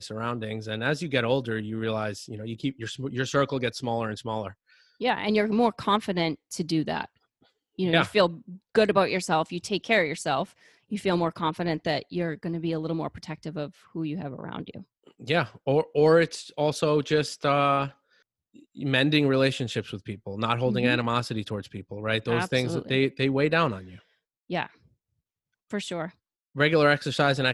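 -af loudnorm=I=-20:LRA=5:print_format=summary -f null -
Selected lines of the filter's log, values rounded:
Input Integrated:    -26.2 LUFS
Input True Peak:      -6.5 dBTP
Input LRA:             4.7 LU
Input Threshold:     -37.0 LUFS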